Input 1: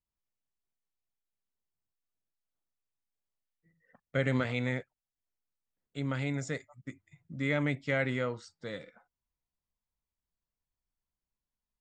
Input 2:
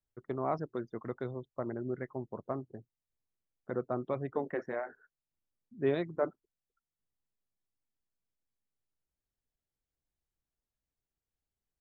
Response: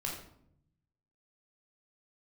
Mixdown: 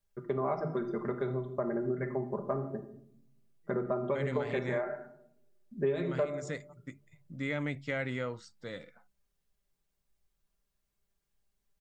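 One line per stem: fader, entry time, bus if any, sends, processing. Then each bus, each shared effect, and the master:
-2.0 dB, 0.00 s, no send, de-hum 69.64 Hz, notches 3
+2.0 dB, 0.00 s, send -4.5 dB, comb 5 ms, depth 73%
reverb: on, RT60 0.70 s, pre-delay 14 ms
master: compression 4:1, threshold -29 dBFS, peak gain reduction 12.5 dB

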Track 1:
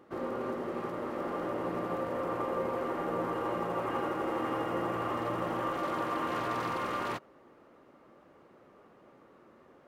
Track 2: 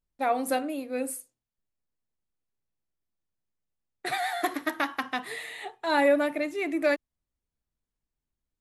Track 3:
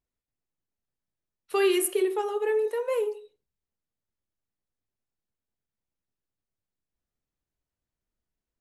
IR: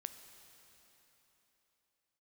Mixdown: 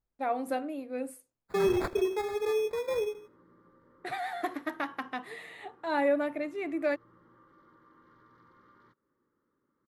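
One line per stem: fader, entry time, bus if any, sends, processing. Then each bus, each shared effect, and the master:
-15.5 dB, 1.75 s, no send, compression 3:1, threshold -41 dBFS, peak gain reduction 10 dB; static phaser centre 2.6 kHz, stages 6
-4.0 dB, 0.00 s, no send, none
-3.0 dB, 0.00 s, no send, sample-and-hold 15×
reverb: none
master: treble shelf 3 kHz -11 dB

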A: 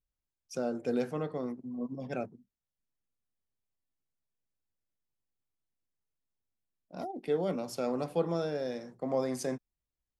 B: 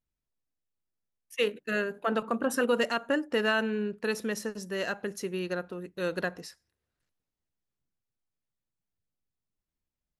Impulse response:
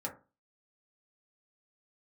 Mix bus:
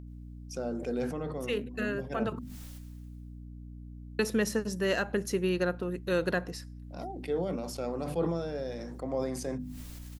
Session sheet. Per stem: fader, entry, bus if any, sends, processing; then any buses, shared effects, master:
-4.5 dB, 0.00 s, send -18.5 dB, hum notches 50/100/150/200/250 Hz; decay stretcher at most 41 dB/s
+2.5 dB, 0.10 s, muted 2.39–4.19 s, no send, peak limiter -20.5 dBFS, peak gain reduction 5.5 dB; auto duck -6 dB, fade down 0.50 s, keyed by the first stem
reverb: on, RT60 0.30 s, pre-delay 3 ms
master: bass shelf 430 Hz +3.5 dB; hum 60 Hz, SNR 11 dB; tape noise reduction on one side only encoder only

